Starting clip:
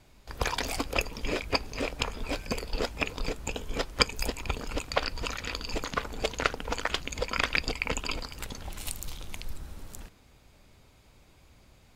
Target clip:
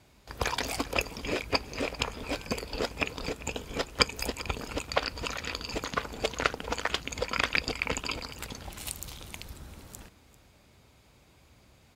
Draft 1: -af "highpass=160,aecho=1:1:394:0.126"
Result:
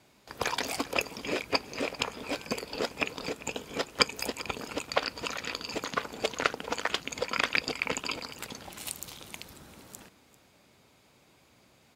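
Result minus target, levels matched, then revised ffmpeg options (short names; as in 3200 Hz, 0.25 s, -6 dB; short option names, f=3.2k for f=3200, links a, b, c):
125 Hz band -7.0 dB
-af "highpass=57,aecho=1:1:394:0.126"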